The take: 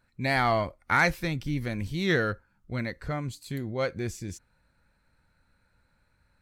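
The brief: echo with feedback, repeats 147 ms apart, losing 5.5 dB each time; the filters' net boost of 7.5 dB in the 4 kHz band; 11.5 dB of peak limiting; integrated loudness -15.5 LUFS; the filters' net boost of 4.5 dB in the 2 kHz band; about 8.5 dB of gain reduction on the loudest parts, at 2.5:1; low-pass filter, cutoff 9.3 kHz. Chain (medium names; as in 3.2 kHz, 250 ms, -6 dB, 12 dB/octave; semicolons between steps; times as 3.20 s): low-pass 9.3 kHz; peaking EQ 2 kHz +4 dB; peaking EQ 4 kHz +7.5 dB; compression 2.5:1, threshold -27 dBFS; peak limiter -23.5 dBFS; feedback delay 147 ms, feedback 53%, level -5.5 dB; trim +18.5 dB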